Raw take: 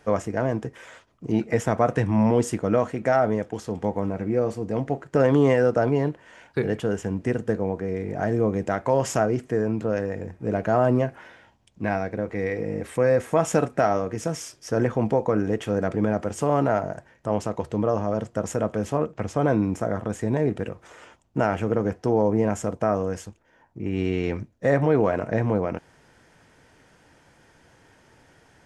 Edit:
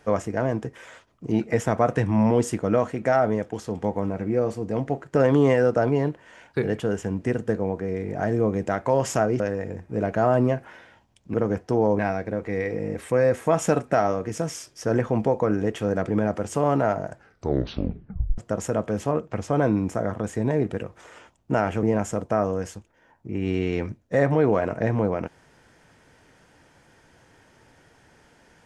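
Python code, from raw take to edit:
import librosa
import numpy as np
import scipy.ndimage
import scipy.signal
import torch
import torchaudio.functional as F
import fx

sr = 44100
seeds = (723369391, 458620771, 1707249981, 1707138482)

y = fx.edit(x, sr, fx.cut(start_s=9.4, length_s=0.51),
    fx.tape_stop(start_s=16.97, length_s=1.27),
    fx.move(start_s=21.69, length_s=0.65, to_s=11.85), tone=tone)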